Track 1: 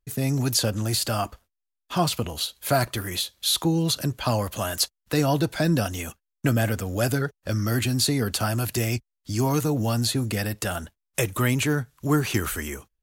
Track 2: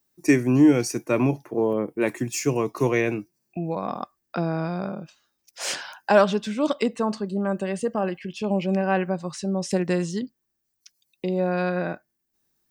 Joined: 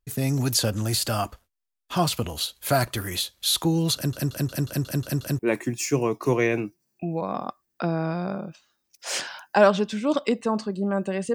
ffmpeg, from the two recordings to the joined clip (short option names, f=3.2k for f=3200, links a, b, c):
-filter_complex "[0:a]apad=whole_dur=11.34,atrim=end=11.34,asplit=8[a][b][c][d][e][f][g][h];[a]atrim=end=4.132[i];[b]atrim=start=3.948:end=4.132[j];[c]atrim=start=3.948:end=4.132[k];[d]atrim=start=3.948:end=4.132[l];[e]atrim=start=3.948:end=4.132[m];[f]atrim=start=3.948:end=4.132[n];[g]atrim=start=3.948:end=4.132[o];[h]atrim=start=3.948:end=4.132[p];[1:a]atrim=start=1.928:end=7.88[q];[i][j]acrossfade=d=0.004:c1=hsin:c2=hsin[r];[r][k]acrossfade=d=0.004:c1=hsin:c2=hsin[s];[s][l]acrossfade=d=0.004:c1=hsin:c2=hsin[t];[t][m]acrossfade=d=0.004:c1=hsin:c2=hsin[u];[u][n]acrossfade=d=0.004:c1=hsin:c2=hsin[v];[v][o]acrossfade=d=0.004:c1=hsin:c2=hsin[w];[w][p]acrossfade=d=0.004:c1=hsin:c2=hsin[x];[x][q]acrossfade=d=0.004:c1=hsin:c2=hsin"